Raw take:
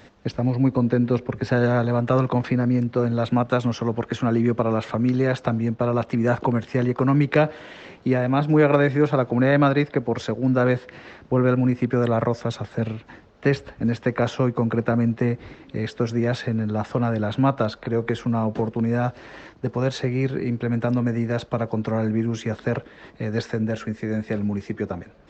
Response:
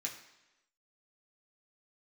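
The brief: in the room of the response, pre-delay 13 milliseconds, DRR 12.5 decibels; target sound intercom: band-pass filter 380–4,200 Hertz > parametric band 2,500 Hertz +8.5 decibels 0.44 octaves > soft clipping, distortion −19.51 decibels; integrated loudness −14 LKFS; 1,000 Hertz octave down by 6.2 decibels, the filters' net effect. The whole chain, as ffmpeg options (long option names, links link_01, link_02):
-filter_complex "[0:a]equalizer=frequency=1000:width_type=o:gain=-9,asplit=2[link_01][link_02];[1:a]atrim=start_sample=2205,adelay=13[link_03];[link_02][link_03]afir=irnorm=-1:irlink=0,volume=-12.5dB[link_04];[link_01][link_04]amix=inputs=2:normalize=0,highpass=380,lowpass=4200,equalizer=frequency=2500:width_type=o:width=0.44:gain=8.5,asoftclip=threshold=-15.5dB,volume=15.5dB"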